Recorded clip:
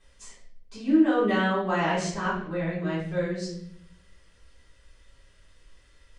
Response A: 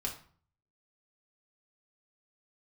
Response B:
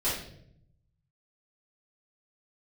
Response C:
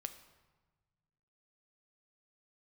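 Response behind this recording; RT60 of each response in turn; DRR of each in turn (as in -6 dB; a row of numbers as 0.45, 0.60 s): B; 0.45, 0.70, 1.3 s; -2.0, -11.5, 8.0 dB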